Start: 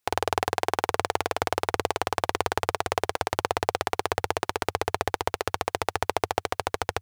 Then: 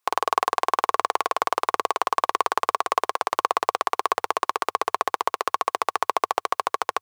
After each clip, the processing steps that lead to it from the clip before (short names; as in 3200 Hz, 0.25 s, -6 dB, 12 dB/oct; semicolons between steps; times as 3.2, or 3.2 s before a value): HPF 370 Hz 12 dB/oct; bell 1100 Hz +14 dB 0.32 oct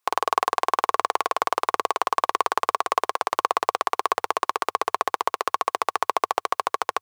nothing audible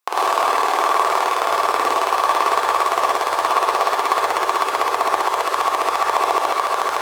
non-linear reverb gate 0.15 s rising, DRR -6 dB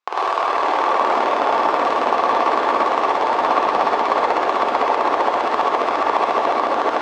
air absorption 150 m; echoes that change speed 0.406 s, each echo -4 st, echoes 2; gain -1 dB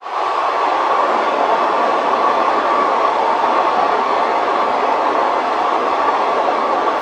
phase scrambler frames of 0.1 s; gain +2.5 dB